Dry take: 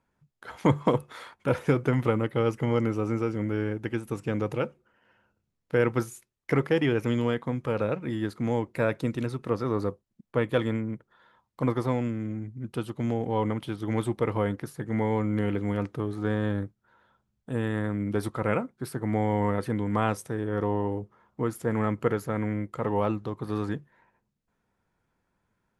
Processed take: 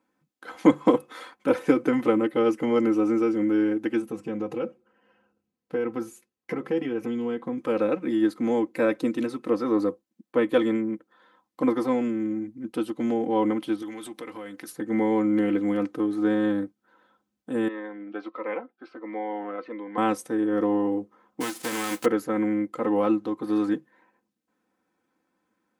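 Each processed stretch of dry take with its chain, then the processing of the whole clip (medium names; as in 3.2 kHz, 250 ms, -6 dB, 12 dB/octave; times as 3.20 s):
4.02–7.58 s: tilt EQ -1.5 dB/octave + compression 3:1, threshold -27 dBFS + comb of notches 300 Hz
13.82–14.72 s: compression 4:1, threshold -33 dBFS + tilt shelf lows -6.5 dB, about 1.3 kHz
17.68–19.98 s: band-pass 590–3800 Hz + distance through air 220 m + Shepard-style phaser falling 1.5 Hz
21.40–22.04 s: formants flattened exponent 0.3 + compression 2:1, threshold -29 dBFS + doubling 16 ms -13 dB
whole clip: high-pass 190 Hz 12 dB/octave; peaking EQ 330 Hz +10.5 dB 0.34 oct; comb 3.9 ms, depth 65%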